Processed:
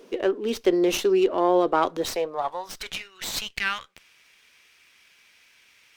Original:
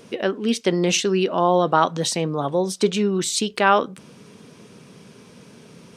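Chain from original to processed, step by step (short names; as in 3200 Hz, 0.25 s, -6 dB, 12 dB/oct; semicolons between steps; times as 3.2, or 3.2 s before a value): high-pass sweep 350 Hz -> 2100 Hz, 2–3; running maximum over 3 samples; gain -6 dB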